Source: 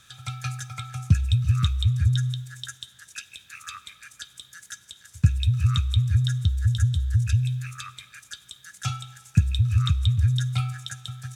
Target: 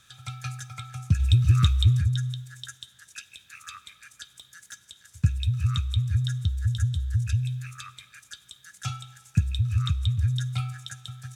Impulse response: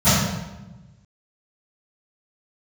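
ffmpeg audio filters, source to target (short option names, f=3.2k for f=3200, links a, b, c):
-filter_complex "[0:a]asplit=3[a][b][c];[a]afade=t=out:st=1.19:d=0.02[d];[b]acontrast=66,afade=t=in:st=1.19:d=0.02,afade=t=out:st=2:d=0.02[e];[c]afade=t=in:st=2:d=0.02[f];[d][e][f]amix=inputs=3:normalize=0,asettb=1/sr,asplit=3[g][h][i];[g]atrim=end=4.364[j];[h]atrim=start=4.36:end=4.86,asetpts=PTS-STARTPTS,afade=t=in:d=0.004:c=qsin,afade=t=out:st=0.496:d=0.004:c=qsin,asoftclip=type=hard:threshold=-30dB[k];[i]atrim=start=4.856[l];[j][k]acrossfade=d=0.004:c1=hsin:c2=qsin[m];[m][l]acrossfade=d=0.004:c1=qsin:c2=hsin,volume=-3.5dB"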